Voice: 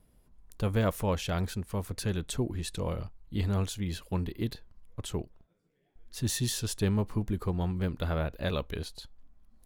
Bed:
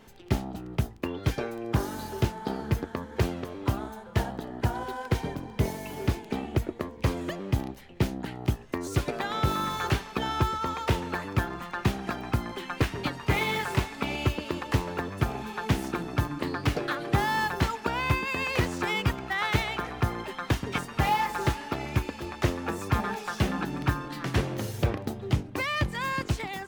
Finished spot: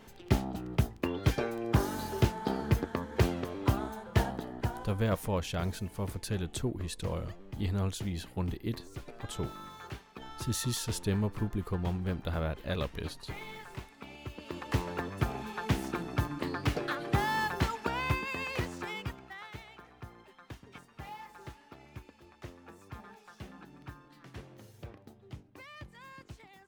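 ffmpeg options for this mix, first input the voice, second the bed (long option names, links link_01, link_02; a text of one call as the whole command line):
ffmpeg -i stem1.wav -i stem2.wav -filter_complex "[0:a]adelay=4250,volume=-2.5dB[link_01];[1:a]volume=12.5dB,afade=type=out:start_time=4.22:duration=0.79:silence=0.149624,afade=type=in:start_time=14.29:duration=0.52:silence=0.223872,afade=type=out:start_time=17.9:duration=1.61:silence=0.149624[link_02];[link_01][link_02]amix=inputs=2:normalize=0" out.wav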